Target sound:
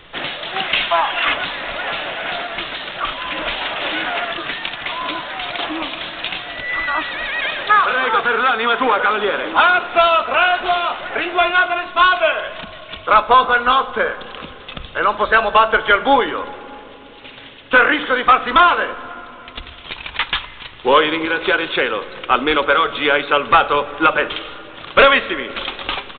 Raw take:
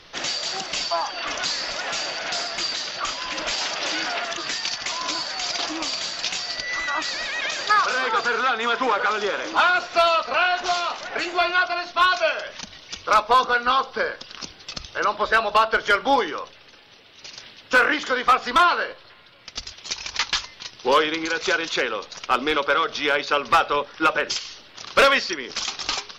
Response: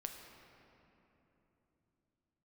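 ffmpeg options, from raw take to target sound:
-filter_complex "[0:a]aresample=8000,aresample=44100,asettb=1/sr,asplit=3[link_01][link_02][link_03];[link_01]atrim=end=0.564[link_04];[link_02]atrim=start=0.56:end=1.34,asetpts=PTS-STARTPTS,afade=type=in:duration=0.004:curve=qsin,afade=type=out:start_time=0.776:duration=0.004:curve=qsin,equalizer=frequency=2300:width=0.63:gain=8.5[link_05];[link_03]atrim=start=1.336[link_06];[link_04][link_05]acrossfade=duration=0.004:curve1=hsin:curve2=qsin[link_07];[link_07][link_06]acrossfade=duration=0.004:curve1=qsin:curve2=hsin,asplit=2[link_08][link_09];[1:a]atrim=start_sample=2205,lowshelf=frequency=150:gain=9.5[link_10];[link_09][link_10]afir=irnorm=-1:irlink=0,volume=-5dB[link_11];[link_08][link_11]amix=inputs=2:normalize=0,volume=3dB"

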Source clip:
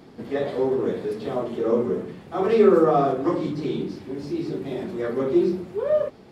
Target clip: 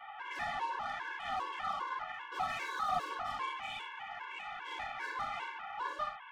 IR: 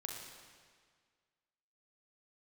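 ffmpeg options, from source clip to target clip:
-filter_complex "[0:a]asuperpass=centerf=1600:order=20:qfactor=0.61,asplit=2[link_01][link_02];[link_02]highpass=frequency=720:poles=1,volume=33dB,asoftclip=type=tanh:threshold=-15.5dB[link_03];[link_01][link_03]amix=inputs=2:normalize=0,lowpass=frequency=1900:poles=1,volume=-6dB[link_04];[1:a]atrim=start_sample=2205,atrim=end_sample=3528[link_05];[link_04][link_05]afir=irnorm=-1:irlink=0,afftfilt=real='re*gt(sin(2*PI*2.5*pts/sr)*(1-2*mod(floor(b*sr/1024/290),2)),0)':imag='im*gt(sin(2*PI*2.5*pts/sr)*(1-2*mod(floor(b*sr/1024/290),2)),0)':win_size=1024:overlap=0.75,volume=-7.5dB"

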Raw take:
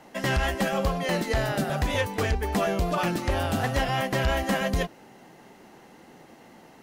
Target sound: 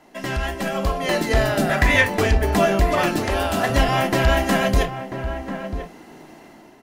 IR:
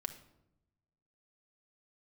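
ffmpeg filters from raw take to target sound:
-filter_complex "[0:a]dynaudnorm=framelen=580:gausssize=3:maxgain=8dB,asettb=1/sr,asplit=3[link_01][link_02][link_03];[link_01]atrim=end=1.694[link_04];[link_02]atrim=start=1.69:end=2.1,asetpts=PTS-STARTPTS,afade=type=in:duration=0.004:curve=qsin,afade=type=out:start_time=0.406:duration=0.004:curve=qsin,equalizer=frequency=1900:width_type=o:width=0.6:gain=12.5[link_05];[link_03]atrim=start=2.096[link_06];[link_04][link_05]acrossfade=duration=0.004:curve1=hsin:curve2=qsin[link_07];[link_07][link_06]acrossfade=duration=0.004:curve1=qsin:curve2=hsin,asettb=1/sr,asplit=3[link_08][link_09][link_10];[link_08]atrim=end=3.254[link_11];[link_09]atrim=start=3.25:end=3.7,asetpts=PTS-STARTPTS,afade=type=in:duration=0.004:curve=qsin,afade=type=out:start_time=0.446:duration=0.004:curve=qsin,highpass=frequency=340:poles=1[link_12];[link_10]atrim=start=3.696[link_13];[link_11][link_12]acrossfade=duration=0.004:curve1=hsin:curve2=qsin[link_14];[link_14][link_13]acrossfade=duration=0.004:curve1=qsin:curve2=hsin,asplit=2[link_15][link_16];[link_16]adelay=991.3,volume=-9dB,highshelf=frequency=4000:gain=-22.3[link_17];[link_15][link_17]amix=inputs=2:normalize=0[link_18];[1:a]atrim=start_sample=2205,atrim=end_sample=4410,asetrate=70560,aresample=44100[link_19];[link_18][link_19]afir=irnorm=-1:irlink=0,volume=4dB"

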